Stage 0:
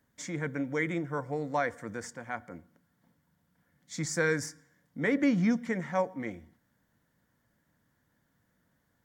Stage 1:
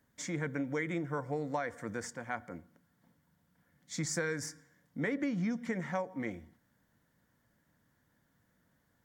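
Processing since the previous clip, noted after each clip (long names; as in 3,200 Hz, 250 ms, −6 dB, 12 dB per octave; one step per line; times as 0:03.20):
downward compressor 12 to 1, threshold −30 dBFS, peak gain reduction 9.5 dB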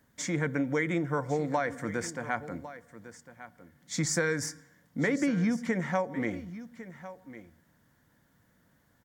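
single-tap delay 1,103 ms −15 dB
level +6 dB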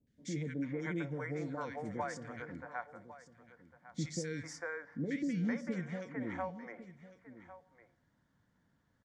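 high-frequency loss of the air 90 metres
three-band delay without the direct sound lows, highs, mids 70/450 ms, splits 500/2,000 Hz
level −6.5 dB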